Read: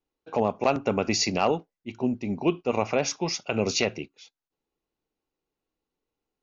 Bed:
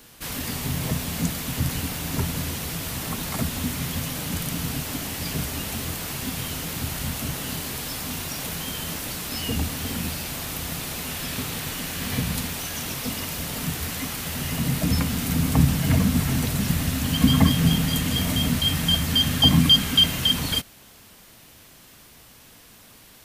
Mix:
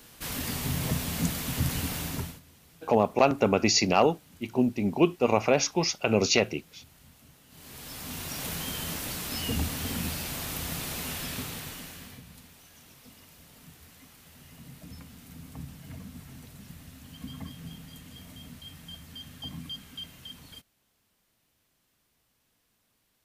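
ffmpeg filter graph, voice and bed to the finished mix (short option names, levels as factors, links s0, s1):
-filter_complex "[0:a]adelay=2550,volume=1.26[s0];[1:a]volume=10.6,afade=t=out:st=2:d=0.4:silence=0.0630957,afade=t=in:st=7.5:d=0.99:silence=0.0668344,afade=t=out:st=11.07:d=1.13:silence=0.1[s1];[s0][s1]amix=inputs=2:normalize=0"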